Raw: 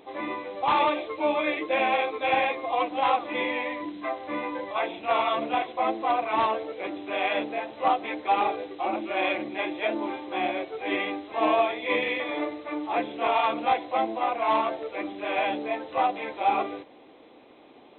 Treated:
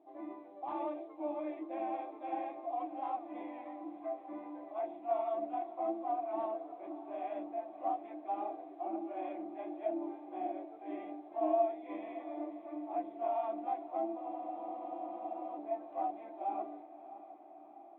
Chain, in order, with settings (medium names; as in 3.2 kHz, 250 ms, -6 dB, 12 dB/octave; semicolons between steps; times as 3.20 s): two resonant band-passes 470 Hz, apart 1 oct; echo that smears into a reverb 623 ms, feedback 64%, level -14.5 dB; spectral freeze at 14.19 s, 1.38 s; trim -5.5 dB